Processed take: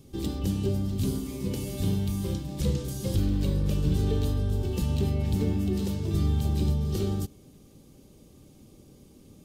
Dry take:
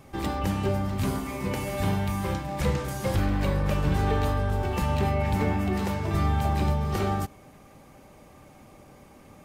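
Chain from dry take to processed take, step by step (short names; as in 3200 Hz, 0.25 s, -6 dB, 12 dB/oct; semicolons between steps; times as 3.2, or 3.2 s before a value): band shelf 1200 Hz -16 dB 2.3 oct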